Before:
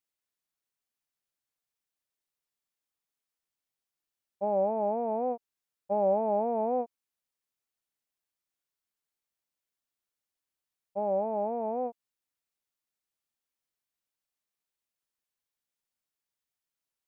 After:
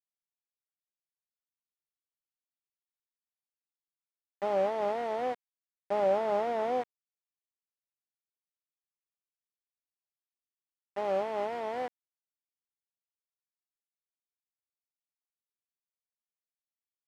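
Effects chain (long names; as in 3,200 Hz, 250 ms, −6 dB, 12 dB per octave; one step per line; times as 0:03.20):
variable-slope delta modulation 16 kbit/s
centre clipping without the shift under −31 dBFS
resonant band-pass 560 Hz, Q 0.52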